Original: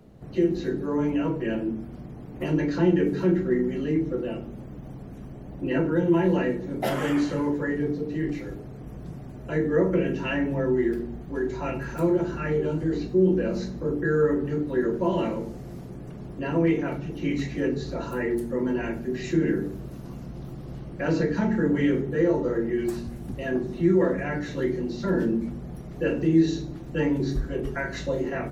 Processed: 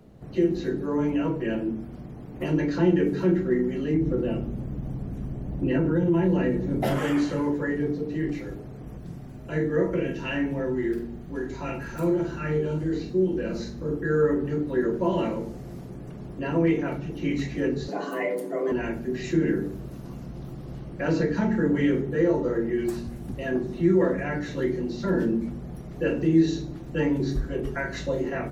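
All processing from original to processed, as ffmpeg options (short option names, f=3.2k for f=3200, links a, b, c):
-filter_complex "[0:a]asettb=1/sr,asplit=3[a][b][c];[a]atrim=end=3.944[d];[b]atrim=start=3.94:end=6.98,asetpts=PTS-STARTPTS,afade=t=in:d=0.004:c=qsin,afade=t=out:st=3.036:d=0.004:c=qsin,lowshelf=f=260:g=10,acompressor=threshold=-20dB:ratio=2.5:attack=3.2:release=140:knee=1:detection=peak[e];[c]atrim=start=6.976[f];[d][e]acrossfade=d=0.004:c1=hsin:c2=qsin[g];[g][f]acrossfade=d=0.004:c1=qsin:c2=hsin,asettb=1/sr,asplit=3[h][i][j];[h]atrim=end=8.984[k];[i]atrim=start=8.98:end=14.1,asetpts=PTS-STARTPTS,afade=t=in:d=0.004:c=qsin,afade=t=out:st=5.116:d=0.004:c=qsin,equalizer=f=640:w=0.4:g=-4,asplit=2[l][m];[m]adelay=46,volume=-6dB[n];[l][n]amix=inputs=2:normalize=0,atrim=end_sample=225792[o];[j]atrim=start=14.096[p];[k][o]acrossfade=d=0.004:c1=hsin:c2=qsin[q];[q][p]acrossfade=d=0.004:c1=qsin:c2=hsin,asettb=1/sr,asplit=3[r][s][t];[r]atrim=end=17.884[u];[s]atrim=start=17.88:end=18.72,asetpts=PTS-STARTPTS,afade=t=in:d=0.004:c=qsin,afade=t=out:st=0.836:d=0.004:c=qsin,aecho=1:1:6.9:0.42,atrim=end_sample=37044,afreqshift=140[v];[t]atrim=start=18.716[w];[u][v]acrossfade=d=0.004:c1=hsin:c2=qsin[x];[x][w]acrossfade=d=0.004:c1=qsin:c2=hsin"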